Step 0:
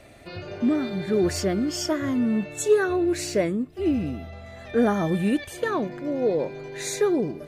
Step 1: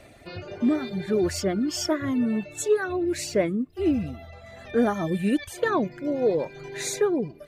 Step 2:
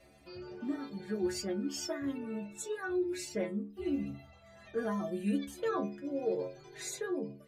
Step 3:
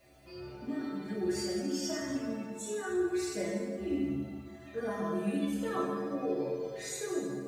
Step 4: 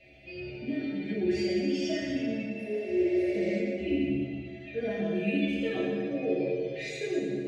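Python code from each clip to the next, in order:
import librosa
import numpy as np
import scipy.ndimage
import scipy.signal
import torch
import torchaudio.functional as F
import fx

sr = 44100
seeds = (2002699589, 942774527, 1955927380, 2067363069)

y1 = fx.dereverb_blind(x, sr, rt60_s=0.75)
y1 = fx.rider(y1, sr, range_db=4, speed_s=0.5)
y2 = fx.stiff_resonator(y1, sr, f0_hz=66.0, decay_s=0.5, stiffness=0.008)
y3 = fx.rev_plate(y2, sr, seeds[0], rt60_s=1.7, hf_ratio=0.75, predelay_ms=0, drr_db=-5.0)
y3 = fx.quant_dither(y3, sr, seeds[1], bits=12, dither='triangular')
y3 = y3 * librosa.db_to_amplitude(-4.0)
y4 = fx.curve_eq(y3, sr, hz=(660.0, 1100.0, 2400.0, 10000.0), db=(0, -24, 12, -24))
y4 = fx.echo_feedback(y4, sr, ms=114, feedback_pct=56, wet_db=-9.5)
y4 = fx.spec_repair(y4, sr, seeds[2], start_s=2.57, length_s=0.94, low_hz=500.0, high_hz=8800.0, source='both')
y4 = y4 * librosa.db_to_amplitude(4.0)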